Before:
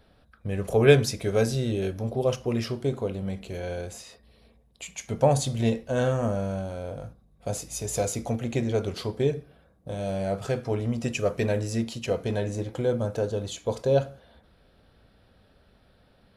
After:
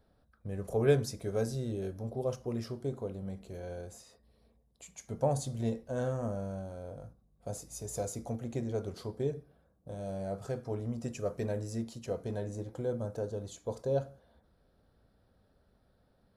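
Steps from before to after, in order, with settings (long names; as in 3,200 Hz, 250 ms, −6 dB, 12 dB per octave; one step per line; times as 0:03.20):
parametric band 2,700 Hz −10.5 dB 1.2 octaves
level −8.5 dB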